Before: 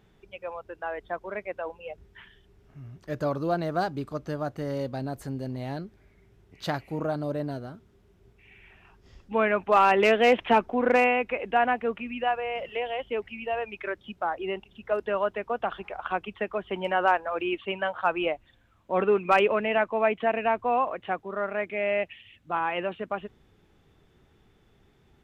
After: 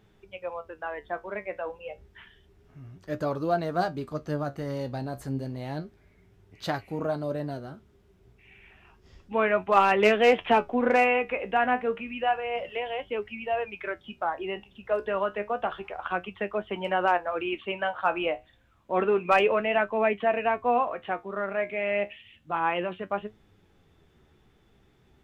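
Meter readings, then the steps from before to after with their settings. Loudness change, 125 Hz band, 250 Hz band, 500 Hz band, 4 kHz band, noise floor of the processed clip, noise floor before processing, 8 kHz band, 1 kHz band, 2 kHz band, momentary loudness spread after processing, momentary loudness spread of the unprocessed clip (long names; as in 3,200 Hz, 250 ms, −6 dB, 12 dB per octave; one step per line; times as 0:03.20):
−0.5 dB, −0.5 dB, −0.5 dB, 0.0 dB, −0.5 dB, −62 dBFS, −62 dBFS, can't be measured, −0.5 dB, 0.0 dB, 15 LU, 15 LU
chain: flanger 0.3 Hz, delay 9.2 ms, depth 7.2 ms, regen +58%
level +4 dB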